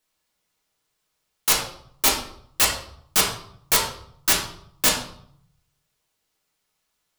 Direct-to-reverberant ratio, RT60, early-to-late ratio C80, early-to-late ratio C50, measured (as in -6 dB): -4.0 dB, 0.65 s, 8.5 dB, 5.0 dB